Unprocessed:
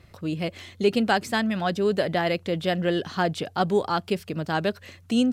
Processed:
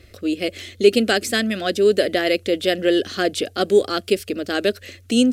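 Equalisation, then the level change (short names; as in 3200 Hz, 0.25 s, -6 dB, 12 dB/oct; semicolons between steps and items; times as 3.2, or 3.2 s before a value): dynamic EQ 9900 Hz, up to +5 dB, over -51 dBFS, Q 0.92; fixed phaser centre 380 Hz, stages 4; +8.5 dB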